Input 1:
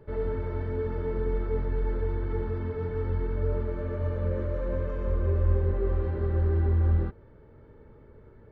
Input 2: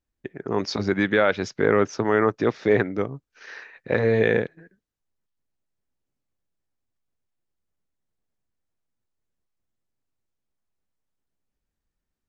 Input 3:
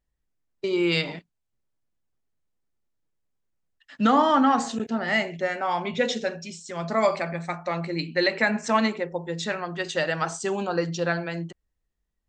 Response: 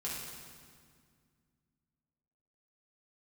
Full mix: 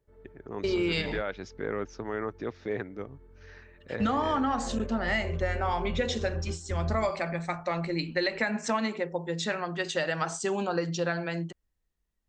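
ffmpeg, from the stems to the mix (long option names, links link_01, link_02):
-filter_complex "[0:a]volume=-7dB[link_01];[1:a]volume=-13dB[link_02];[2:a]volume=-1dB,asplit=2[link_03][link_04];[link_04]apad=whole_len=375518[link_05];[link_01][link_05]sidechaingate=range=-18dB:threshold=-38dB:ratio=16:detection=peak[link_06];[link_06][link_02][link_03]amix=inputs=3:normalize=0,acompressor=threshold=-24dB:ratio=6"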